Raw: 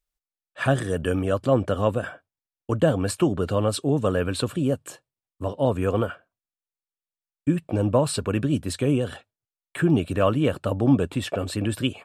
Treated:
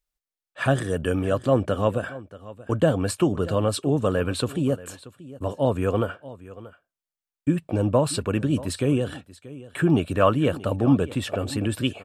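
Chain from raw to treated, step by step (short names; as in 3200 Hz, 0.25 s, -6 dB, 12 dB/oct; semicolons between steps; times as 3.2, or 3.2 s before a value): 9.86–10.33 dynamic EQ 1200 Hz, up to +5 dB, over -34 dBFS, Q 0.88; echo 0.632 s -18 dB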